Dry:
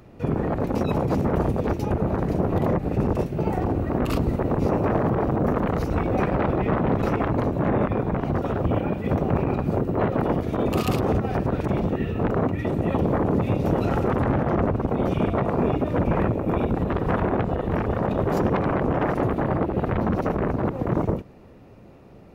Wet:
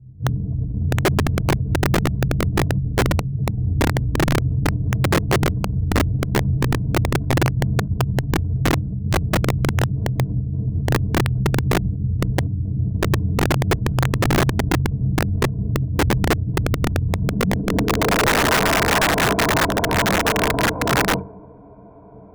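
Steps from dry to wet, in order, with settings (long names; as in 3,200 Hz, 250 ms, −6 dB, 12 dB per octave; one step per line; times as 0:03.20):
EQ curve with evenly spaced ripples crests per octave 1.7, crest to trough 15 dB
on a send at −20.5 dB: convolution reverb RT60 1.3 s, pre-delay 73 ms
on the sum: low-pass filter sweep 120 Hz → 910 Hz, 0:17.15–0:18.66
wrap-around overflow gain 12 dB
dynamic equaliser 1,800 Hz, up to +4 dB, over −39 dBFS, Q 1.7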